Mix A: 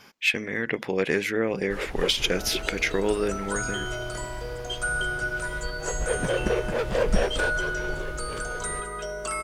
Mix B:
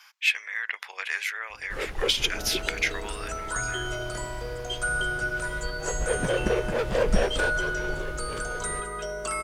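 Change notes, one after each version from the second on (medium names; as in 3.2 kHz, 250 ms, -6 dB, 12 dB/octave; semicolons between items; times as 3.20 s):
speech: add high-pass 1 kHz 24 dB/octave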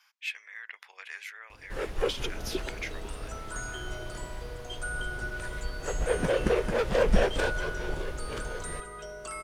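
speech -12.0 dB; second sound -8.5 dB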